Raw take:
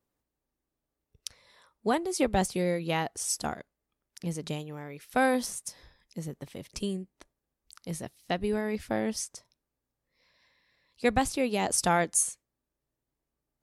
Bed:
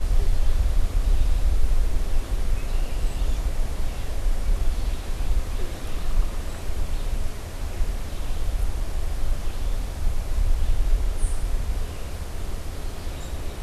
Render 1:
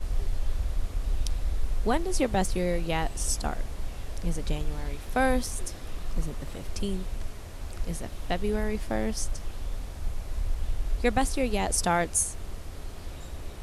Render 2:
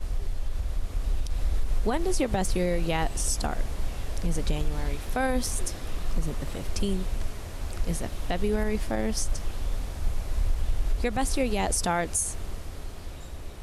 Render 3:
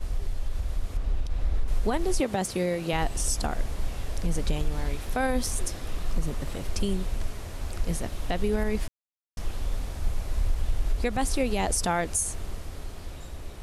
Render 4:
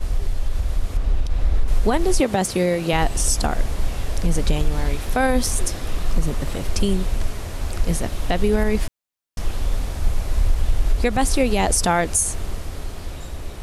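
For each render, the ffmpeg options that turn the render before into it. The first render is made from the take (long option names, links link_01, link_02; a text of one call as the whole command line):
ffmpeg -i in.wav -i bed.wav -filter_complex "[1:a]volume=-7.5dB[link_01];[0:a][link_01]amix=inputs=2:normalize=0" out.wav
ffmpeg -i in.wav -af "alimiter=limit=-20dB:level=0:latency=1:release=84,dynaudnorm=framelen=140:gausssize=17:maxgain=4dB" out.wav
ffmpeg -i in.wav -filter_complex "[0:a]asettb=1/sr,asplit=3[link_01][link_02][link_03];[link_01]atrim=end=0.974[link_04];[link_02]atrim=start=0.97:end=1.68,asetpts=PTS-STARTPTS,afade=type=in:duration=0.004:curve=qsin,afade=type=out:start_time=0.706:duration=0.004:curve=qsin,lowpass=frequency=2800:poles=1[link_05];[link_03]atrim=start=1.676[link_06];[link_04][link_05]acrossfade=duration=0.004:curve1=hsin:curve2=qsin[link_07];[link_07][link_06]acrossfade=duration=0.004:curve1=qsin:curve2=hsin,asettb=1/sr,asplit=3[link_08][link_09][link_10];[link_08]atrim=end=2.204[link_11];[link_09]atrim=start=2.2:end=2.93,asetpts=PTS-STARTPTS,afade=type=in:duration=0.004:curve=qsin,afade=type=out:start_time=0.726:duration=0.004:curve=qsin,highpass=130[link_12];[link_10]atrim=start=2.926[link_13];[link_11][link_12]acrossfade=duration=0.004:curve1=hsin:curve2=qsin[link_14];[link_14][link_13]acrossfade=duration=0.004:curve1=qsin:curve2=hsin,asplit=3[link_15][link_16][link_17];[link_15]atrim=end=8.88,asetpts=PTS-STARTPTS,afade=type=out:start_time=8.876:duration=0.004:curve=hsin[link_18];[link_16]atrim=start=8.88:end=9.37,asetpts=PTS-STARTPTS,volume=0[link_19];[link_17]atrim=start=9.37,asetpts=PTS-STARTPTS,afade=type=in:duration=0.004:curve=hsin[link_20];[link_18][link_19][link_20]concat=n=3:v=0:a=1" out.wav
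ffmpeg -i in.wav -af "volume=7.5dB" out.wav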